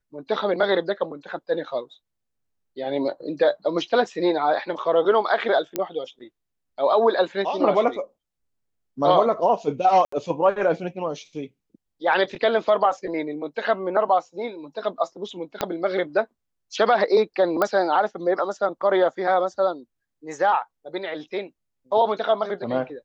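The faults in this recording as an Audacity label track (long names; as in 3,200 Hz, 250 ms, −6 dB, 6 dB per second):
5.760000	5.760000	click −10 dBFS
10.050000	10.120000	drop-out 74 ms
15.610000	15.610000	click −8 dBFS
17.620000	17.620000	click −9 dBFS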